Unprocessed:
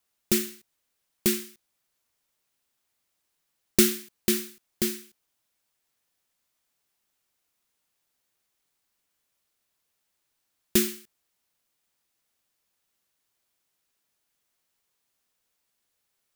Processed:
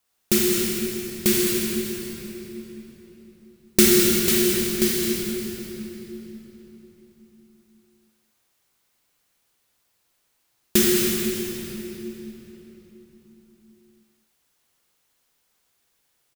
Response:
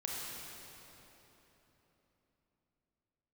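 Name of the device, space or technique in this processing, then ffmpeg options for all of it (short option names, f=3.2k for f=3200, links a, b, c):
cave: -filter_complex "[0:a]aecho=1:1:209:0.335[a];[1:a]atrim=start_sample=2205[b];[a][b]afir=irnorm=-1:irlink=0,volume=6dB"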